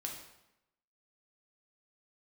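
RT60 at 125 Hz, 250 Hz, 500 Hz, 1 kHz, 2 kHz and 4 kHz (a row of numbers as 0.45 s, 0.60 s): 0.90 s, 0.95 s, 0.90 s, 0.90 s, 0.85 s, 0.75 s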